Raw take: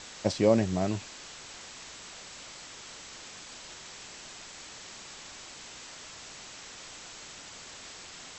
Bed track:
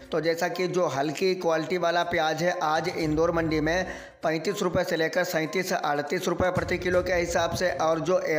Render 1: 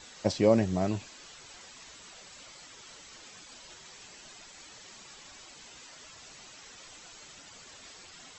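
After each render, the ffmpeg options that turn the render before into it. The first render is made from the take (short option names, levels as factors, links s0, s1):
-af "afftdn=nr=9:nf=-47"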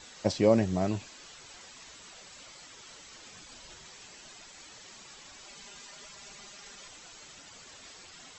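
-filter_complex "[0:a]asettb=1/sr,asplit=3[s0][s1][s2];[s0]atrim=end=3.264[s3];[s1]atrim=start=3.26:end=3.89,asetpts=PTS-STARTPTS,afade=t=in:d=0.004:c=qsin,afade=t=out:st=0.626:d=0.004:c=qsin,lowshelf=f=150:g=7.5[s4];[s2]atrim=start=3.886[s5];[s3][s4]acrossfade=d=0.004:c1=hsin:c2=qsin[s6];[s6][s5]acrossfade=d=0.004:c1=qsin:c2=hsin,asettb=1/sr,asplit=3[s7][s8][s9];[s7]atrim=end=5.444[s10];[s8]atrim=start=5.44:end=6.88,asetpts=PTS-STARTPTS,afade=t=in:d=0.004:c=qsin,afade=t=out:st=1.436:d=0.004:c=qsin,aecho=1:1:5:0.65,atrim=end_sample=63504[s11];[s9]atrim=start=6.876[s12];[s10][s11]acrossfade=d=0.004:c1=hsin:c2=qsin[s13];[s13][s12]acrossfade=d=0.004:c1=qsin:c2=hsin"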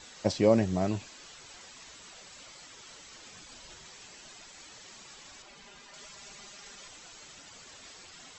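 -filter_complex "[0:a]asettb=1/sr,asplit=3[s0][s1][s2];[s0]atrim=end=5.424[s3];[s1]atrim=start=5.42:end=5.94,asetpts=PTS-STARTPTS,afade=t=in:d=0.004:c=qsin,afade=t=out:st=0.516:d=0.004:c=qsin,highshelf=f=5100:g=-11.5[s4];[s2]atrim=start=5.936[s5];[s3][s4]acrossfade=d=0.004:c1=hsin:c2=qsin[s6];[s6][s5]acrossfade=d=0.004:c1=qsin:c2=hsin"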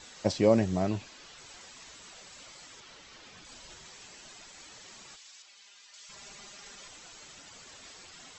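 -filter_complex "[0:a]asettb=1/sr,asplit=3[s0][s1][s2];[s0]atrim=end=0.824[s3];[s1]atrim=start=0.82:end=1.38,asetpts=PTS-STARTPTS,afade=t=in:d=0.004:c=qsin,afade=t=out:st=0.556:d=0.004:c=qsin,lowpass=6400[s4];[s2]atrim=start=1.376[s5];[s3][s4]acrossfade=d=0.004:c1=hsin:c2=qsin[s6];[s6][s5]acrossfade=d=0.004:c1=qsin:c2=hsin,asettb=1/sr,asplit=3[s7][s8][s9];[s7]atrim=end=2.804[s10];[s8]atrim=start=2.8:end=3.45,asetpts=PTS-STARTPTS,afade=t=in:d=0.004:c=qsin,afade=t=out:st=0.646:d=0.004:c=qsin,lowpass=5200[s11];[s9]atrim=start=3.446[s12];[s10][s11]acrossfade=d=0.004:c1=hsin:c2=qsin[s13];[s13][s12]acrossfade=d=0.004:c1=qsin:c2=hsin,asplit=3[s14][s15][s16];[s14]afade=t=out:st=5.15:d=0.02[s17];[s15]bandpass=f=5200:t=q:w=0.66,afade=t=in:st=5.15:d=0.02,afade=t=out:st=6.08:d=0.02[s18];[s16]afade=t=in:st=6.08:d=0.02[s19];[s17][s18][s19]amix=inputs=3:normalize=0"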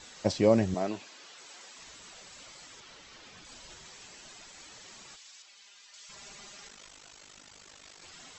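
-filter_complex "[0:a]asettb=1/sr,asplit=3[s0][s1][s2];[s0]atrim=end=0.744[s3];[s1]atrim=start=0.74:end=1.79,asetpts=PTS-STARTPTS,afade=t=in:d=0.004:c=qsin,afade=t=out:st=1.046:d=0.004:c=qsin,highpass=280[s4];[s2]atrim=start=1.786[s5];[s3][s4]acrossfade=d=0.004:c1=hsin:c2=qsin[s6];[s6][s5]acrossfade=d=0.004:c1=qsin:c2=hsin,asettb=1/sr,asplit=3[s7][s8][s9];[s7]atrim=end=6.674[s10];[s8]atrim=start=6.67:end=8.02,asetpts=PTS-STARTPTS,afade=t=in:d=0.004:c=qsin,afade=t=out:st=1.346:d=0.004:c=qsin,aeval=exprs='val(0)*sin(2*PI*25*n/s)':c=same[s11];[s9]atrim=start=8.016[s12];[s10][s11]acrossfade=d=0.004:c1=hsin:c2=qsin[s13];[s13][s12]acrossfade=d=0.004:c1=qsin:c2=hsin"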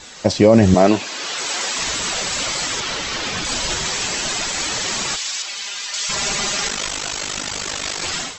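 -af "dynaudnorm=f=340:g=3:m=6.68,alimiter=level_in=3.55:limit=0.891:release=50:level=0:latency=1"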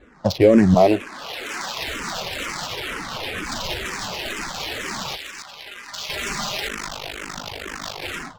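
-filter_complex "[0:a]adynamicsmooth=sensitivity=2.5:basefreq=720,asplit=2[s0][s1];[s1]afreqshift=-2.1[s2];[s0][s2]amix=inputs=2:normalize=1"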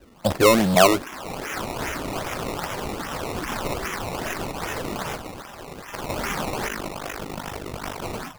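-filter_complex "[0:a]acrossover=split=420|5200[s0][s1][s2];[s0]volume=10.6,asoftclip=hard,volume=0.0944[s3];[s3][s1][s2]amix=inputs=3:normalize=0,acrusher=samples=19:mix=1:aa=0.000001:lfo=1:lforange=19:lforate=2.5"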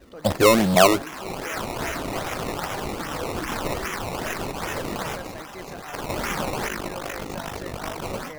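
-filter_complex "[1:a]volume=0.178[s0];[0:a][s0]amix=inputs=2:normalize=0"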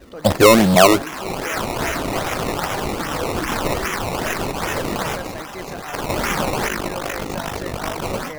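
-af "volume=2,alimiter=limit=0.794:level=0:latency=1"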